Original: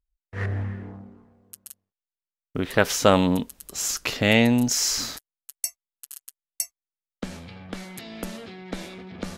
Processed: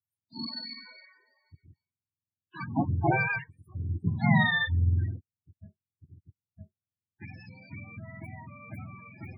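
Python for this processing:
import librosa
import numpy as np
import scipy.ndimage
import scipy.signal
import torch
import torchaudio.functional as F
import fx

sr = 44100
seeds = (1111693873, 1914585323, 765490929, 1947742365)

y = fx.octave_mirror(x, sr, pivot_hz=660.0)
y = fx.spec_topn(y, sr, count=16)
y = y * 10.0 ** (-5.0 / 20.0)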